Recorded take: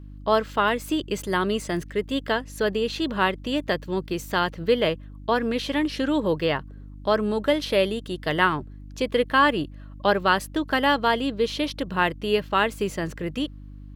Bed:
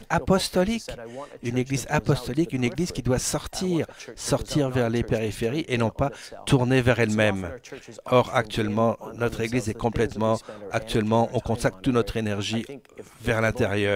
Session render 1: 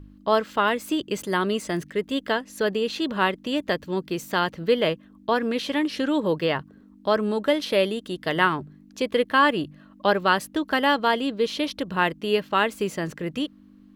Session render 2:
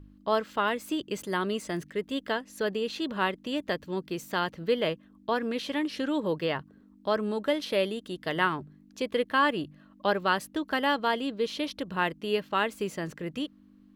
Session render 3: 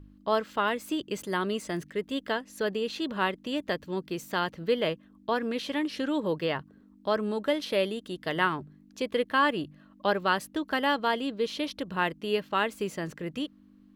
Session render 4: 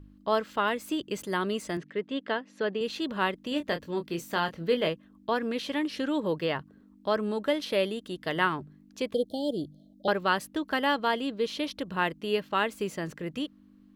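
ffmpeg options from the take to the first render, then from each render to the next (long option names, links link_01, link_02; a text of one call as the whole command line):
ffmpeg -i in.wav -af "bandreject=frequency=50:width_type=h:width=4,bandreject=frequency=100:width_type=h:width=4,bandreject=frequency=150:width_type=h:width=4" out.wav
ffmpeg -i in.wav -af "volume=-5.5dB" out.wav
ffmpeg -i in.wav -af anull out.wav
ffmpeg -i in.wav -filter_complex "[0:a]asettb=1/sr,asplit=3[link_01][link_02][link_03];[link_01]atrim=end=1.774[link_04];[link_02]atrim=start=1.77:end=2.81,asetpts=PTS-STARTPTS,afade=type=in:duration=0.004:curve=qsin,afade=type=out:start_time=1.036:duration=0.004:curve=qsin,highpass=160,lowpass=3600[link_05];[link_03]atrim=start=2.806[link_06];[link_04][link_05]acrossfade=duration=0.004:curve1=hsin:curve2=qsin[link_07];[link_07][link_06]acrossfade=duration=0.004:curve1=qsin:curve2=hsin,asettb=1/sr,asplit=3[link_08][link_09][link_10];[link_08]atrim=end=3.494[link_11];[link_09]atrim=start=3.49:end=4.88,asetpts=PTS-STARTPTS,afade=type=in:duration=0.004:curve=qsin,afade=type=out:start_time=1.386:duration=0.004:curve=qsin,asplit=2[link_12][link_13];[link_13]adelay=24,volume=-8dB[link_14];[link_12][link_14]amix=inputs=2:normalize=0,atrim=end_sample=61299[link_15];[link_10]atrim=start=4.876[link_16];[link_11][link_15]acrossfade=duration=0.004:curve1=hsin:curve2=qsin[link_17];[link_17][link_16]acrossfade=duration=0.004:curve1=qsin:curve2=hsin,asettb=1/sr,asplit=3[link_18][link_19][link_20];[link_18]atrim=end=9.144[link_21];[link_19]atrim=start=9.14:end=10.08,asetpts=PTS-STARTPTS,afade=type=in:duration=0.004:curve=qsin,afade=type=out:start_time=0.936:duration=0.004:curve=qsin,asuperstop=centerf=1600:order=20:qfactor=0.63[link_22];[link_20]atrim=start=10.076[link_23];[link_21][link_22]acrossfade=duration=0.004:curve1=hsin:curve2=qsin[link_24];[link_24][link_23]acrossfade=duration=0.004:curve1=qsin:curve2=hsin" out.wav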